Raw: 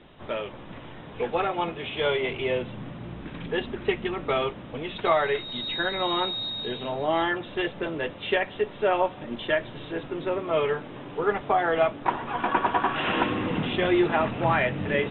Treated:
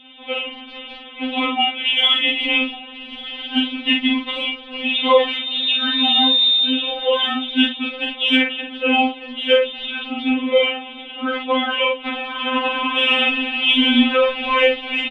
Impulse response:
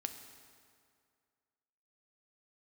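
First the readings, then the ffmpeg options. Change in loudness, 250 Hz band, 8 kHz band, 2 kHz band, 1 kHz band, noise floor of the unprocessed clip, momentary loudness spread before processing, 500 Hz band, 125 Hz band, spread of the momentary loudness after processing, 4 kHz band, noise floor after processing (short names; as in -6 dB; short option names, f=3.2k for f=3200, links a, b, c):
+9.5 dB, +9.0 dB, n/a, +9.5 dB, +3.0 dB, -42 dBFS, 11 LU, +4.5 dB, under -15 dB, 13 LU, +17.0 dB, -38 dBFS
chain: -filter_complex "[0:a]asplit=2[a][b];[b]adelay=46,volume=-4dB[c];[a][c]amix=inputs=2:normalize=0,acrossover=split=140|1400[d][e][f];[d]acrusher=bits=4:dc=4:mix=0:aa=0.000001[g];[g][e][f]amix=inputs=3:normalize=0,highpass=f=160:t=q:w=0.5412,highpass=f=160:t=q:w=1.307,lowpass=f=3.5k:t=q:w=0.5176,lowpass=f=3.5k:t=q:w=0.7071,lowpass=f=3.5k:t=q:w=1.932,afreqshift=-110,aexciter=amount=8.5:drive=5.4:freq=2.5k,asplit=2[h][i];[i]aecho=0:1:1144:0.106[j];[h][j]amix=inputs=2:normalize=0,afftfilt=real='re*3.46*eq(mod(b,12),0)':imag='im*3.46*eq(mod(b,12),0)':win_size=2048:overlap=0.75,volume=4.5dB"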